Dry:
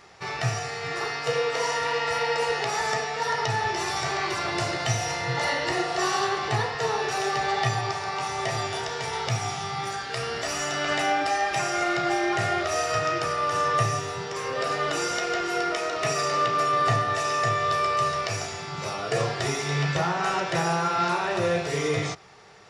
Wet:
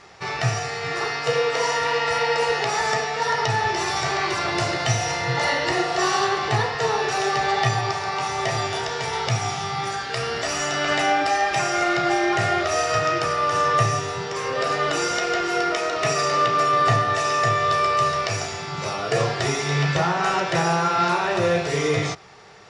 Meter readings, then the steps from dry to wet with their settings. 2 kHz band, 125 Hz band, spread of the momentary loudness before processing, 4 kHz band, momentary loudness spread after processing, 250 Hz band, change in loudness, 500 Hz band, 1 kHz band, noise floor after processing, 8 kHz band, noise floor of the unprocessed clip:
+4.0 dB, +4.0 dB, 6 LU, +4.0 dB, 6 LU, +4.0 dB, +4.0 dB, +4.0 dB, +4.0 dB, -30 dBFS, +3.0 dB, -34 dBFS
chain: low-pass 8.8 kHz 12 dB/octave; trim +4 dB

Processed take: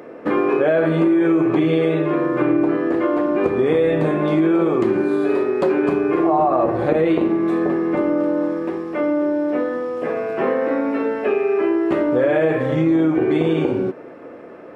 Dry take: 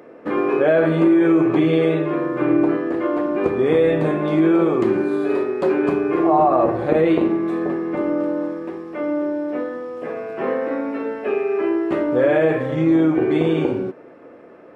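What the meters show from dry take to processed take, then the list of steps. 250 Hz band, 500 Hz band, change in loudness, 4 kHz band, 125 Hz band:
+0.5 dB, +0.5 dB, +0.5 dB, no reading, +0.5 dB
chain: compression 2.5:1, threshold -22 dBFS, peak gain reduction 7.5 dB; trim +5.5 dB

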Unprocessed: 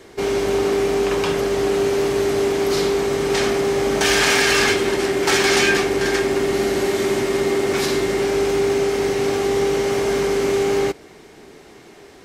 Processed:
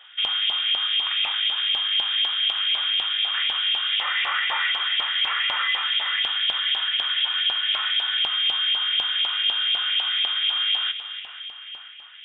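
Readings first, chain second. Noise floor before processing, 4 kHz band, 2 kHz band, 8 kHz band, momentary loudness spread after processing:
-44 dBFS, +8.5 dB, -4.0 dB, under -40 dB, 3 LU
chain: two-band feedback delay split 390 Hz, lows 284 ms, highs 484 ms, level -12.5 dB; frequency inversion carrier 3.6 kHz; peak limiter -13 dBFS, peak gain reduction 7.5 dB; LFO high-pass saw up 4 Hz 800–2700 Hz; hum notches 60/120/180/240 Hz; trim -5.5 dB

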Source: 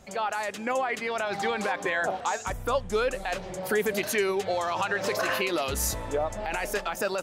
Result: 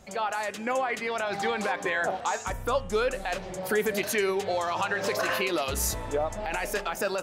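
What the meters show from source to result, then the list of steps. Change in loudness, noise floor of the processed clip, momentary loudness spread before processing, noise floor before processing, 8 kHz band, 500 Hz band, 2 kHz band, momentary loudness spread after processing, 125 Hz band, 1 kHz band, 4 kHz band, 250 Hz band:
0.0 dB, -39 dBFS, 4 LU, -39 dBFS, 0.0 dB, 0.0 dB, 0.0 dB, 4 LU, 0.0 dB, 0.0 dB, 0.0 dB, 0.0 dB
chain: de-hum 135.4 Hz, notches 23

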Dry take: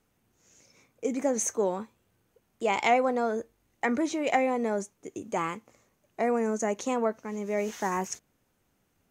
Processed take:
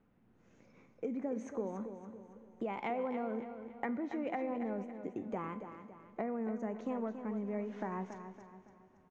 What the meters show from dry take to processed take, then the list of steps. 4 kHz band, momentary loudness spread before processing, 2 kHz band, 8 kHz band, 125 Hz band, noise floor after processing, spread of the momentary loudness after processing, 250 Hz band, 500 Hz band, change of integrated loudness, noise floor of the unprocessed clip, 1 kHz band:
under -20 dB, 12 LU, -14.5 dB, under -30 dB, -4.5 dB, -67 dBFS, 13 LU, -6.5 dB, -11.0 dB, -10.5 dB, -73 dBFS, -12.5 dB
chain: low-pass 1.9 kHz 12 dB/octave; peaking EQ 210 Hz +7.5 dB 1 oct; compression 5:1, threshold -36 dBFS, peak gain reduction 16.5 dB; feedback comb 510 Hz, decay 0.59 s, mix 60%; on a send: feedback delay 280 ms, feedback 41%, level -9.5 dB; on the sum: Schroeder reverb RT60 3.2 s, combs from 32 ms, DRR 15.5 dB; trim +7 dB

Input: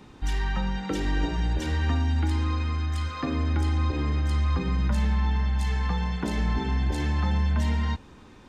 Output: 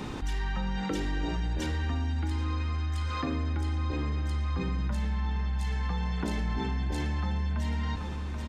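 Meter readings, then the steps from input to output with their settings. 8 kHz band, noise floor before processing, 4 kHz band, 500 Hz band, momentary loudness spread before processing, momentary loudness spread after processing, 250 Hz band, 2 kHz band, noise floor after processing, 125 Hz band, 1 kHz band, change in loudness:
-3.5 dB, -49 dBFS, -3.5 dB, -3.5 dB, 4 LU, 2 LU, -4.0 dB, -4.0 dB, -34 dBFS, -5.0 dB, -4.0 dB, -4.5 dB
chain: delay 782 ms -17.5 dB; level flattener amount 70%; trim -7 dB

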